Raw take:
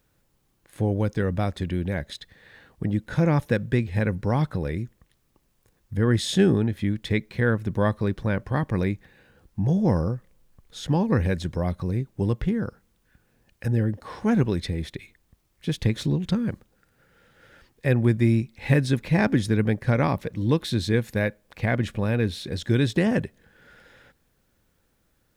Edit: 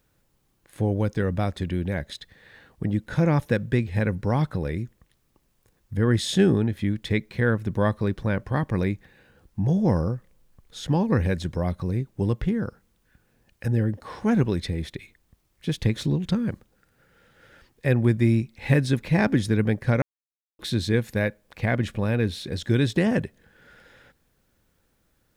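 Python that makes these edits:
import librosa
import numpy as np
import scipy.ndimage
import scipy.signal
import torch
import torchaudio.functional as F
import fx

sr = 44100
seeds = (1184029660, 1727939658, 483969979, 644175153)

y = fx.edit(x, sr, fx.silence(start_s=20.02, length_s=0.57), tone=tone)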